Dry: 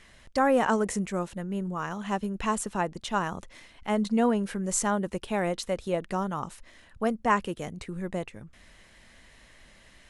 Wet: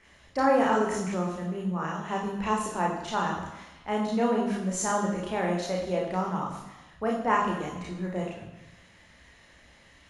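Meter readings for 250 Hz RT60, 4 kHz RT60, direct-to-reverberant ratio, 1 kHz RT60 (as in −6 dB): 1.0 s, 1.1 s, −2.0 dB, 1.1 s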